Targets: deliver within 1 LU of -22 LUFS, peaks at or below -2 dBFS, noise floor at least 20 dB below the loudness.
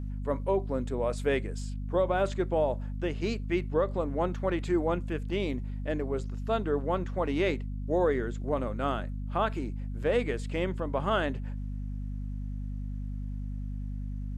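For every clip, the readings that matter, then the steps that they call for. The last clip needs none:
hum 50 Hz; harmonics up to 250 Hz; hum level -32 dBFS; loudness -31.5 LUFS; peak -15.5 dBFS; loudness target -22.0 LUFS
-> de-hum 50 Hz, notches 5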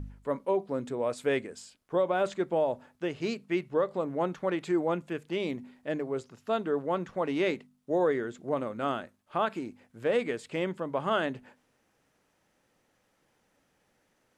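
hum none; loudness -31.5 LUFS; peak -15.5 dBFS; loudness target -22.0 LUFS
-> gain +9.5 dB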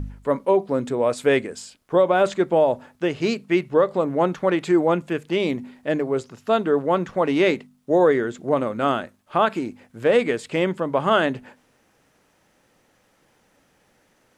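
loudness -22.0 LUFS; peak -6.0 dBFS; noise floor -63 dBFS

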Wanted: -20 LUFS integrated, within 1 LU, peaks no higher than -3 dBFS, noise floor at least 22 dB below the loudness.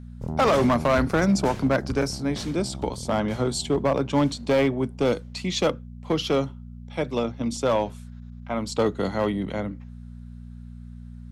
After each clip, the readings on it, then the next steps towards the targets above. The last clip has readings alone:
clipped 1.5%; flat tops at -15.0 dBFS; hum 60 Hz; harmonics up to 240 Hz; hum level -37 dBFS; loudness -25.0 LUFS; peak -15.0 dBFS; loudness target -20.0 LUFS
-> clip repair -15 dBFS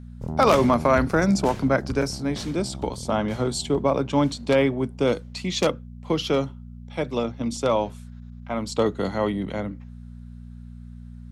clipped 0.0%; hum 60 Hz; harmonics up to 240 Hz; hum level -37 dBFS
-> de-hum 60 Hz, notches 4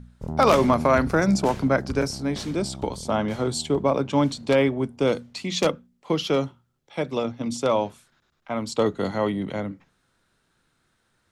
hum none; loudness -24.0 LUFS; peak -5.0 dBFS; loudness target -20.0 LUFS
-> gain +4 dB; limiter -3 dBFS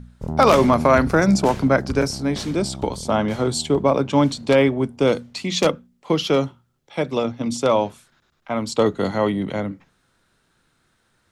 loudness -20.0 LUFS; peak -3.0 dBFS; noise floor -66 dBFS

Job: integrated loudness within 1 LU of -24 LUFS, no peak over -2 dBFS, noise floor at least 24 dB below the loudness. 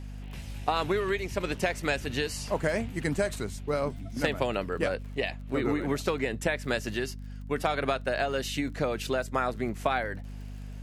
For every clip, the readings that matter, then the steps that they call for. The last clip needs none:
ticks 36/s; hum 50 Hz; harmonics up to 250 Hz; hum level -37 dBFS; loudness -30.5 LUFS; peak -10.5 dBFS; loudness target -24.0 LUFS
-> de-click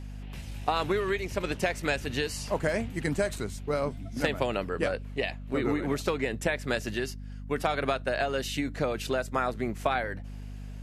ticks 0/s; hum 50 Hz; harmonics up to 250 Hz; hum level -37 dBFS
-> notches 50/100/150/200/250 Hz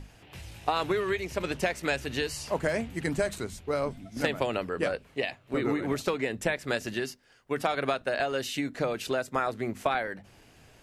hum none; loudness -30.5 LUFS; peak -11.0 dBFS; loudness target -24.0 LUFS
-> gain +6.5 dB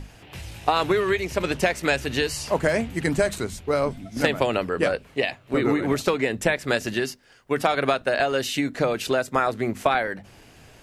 loudness -24.0 LUFS; peak -4.5 dBFS; noise floor -52 dBFS

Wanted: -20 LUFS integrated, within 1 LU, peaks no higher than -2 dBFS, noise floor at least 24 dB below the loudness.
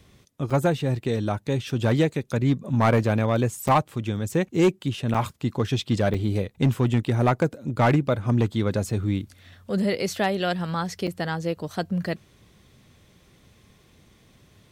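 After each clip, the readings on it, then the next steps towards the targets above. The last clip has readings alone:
clipped 0.6%; flat tops at -13.0 dBFS; dropouts 5; longest dropout 5.5 ms; loudness -24.5 LUFS; peak -13.0 dBFS; loudness target -20.0 LUFS
-> clip repair -13 dBFS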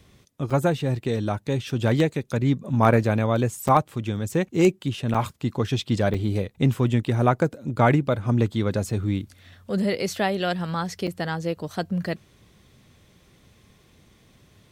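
clipped 0.0%; dropouts 5; longest dropout 5.5 ms
-> interpolate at 0.5/3.68/5.14/6.14/11.07, 5.5 ms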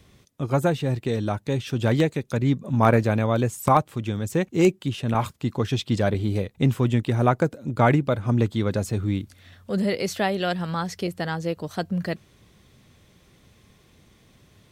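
dropouts 0; loudness -24.0 LUFS; peak -4.0 dBFS; loudness target -20.0 LUFS
-> gain +4 dB; limiter -2 dBFS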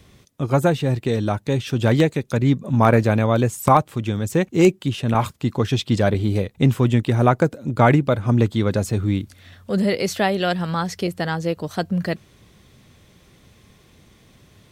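loudness -20.5 LUFS; peak -2.0 dBFS; noise floor -54 dBFS

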